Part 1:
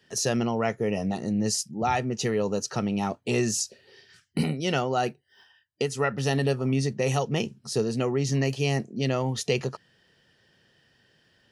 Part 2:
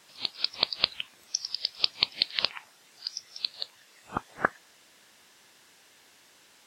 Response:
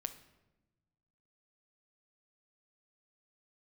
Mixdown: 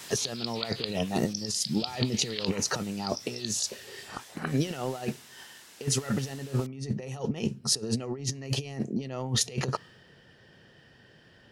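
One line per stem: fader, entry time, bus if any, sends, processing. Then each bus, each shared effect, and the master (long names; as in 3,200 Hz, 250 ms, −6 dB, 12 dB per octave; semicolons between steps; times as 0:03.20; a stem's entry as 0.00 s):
+1.0 dB, 0.00 s, send −14 dB, compressor whose output falls as the input rises −32 dBFS, ratio −0.5
−7.0 dB, 0.00 s, no send, high-shelf EQ 3,700 Hz +8.5 dB; envelope flattener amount 50%; automatic ducking −7 dB, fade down 0.30 s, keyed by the first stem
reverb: on, RT60 1.0 s, pre-delay 7 ms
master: one half of a high-frequency compander decoder only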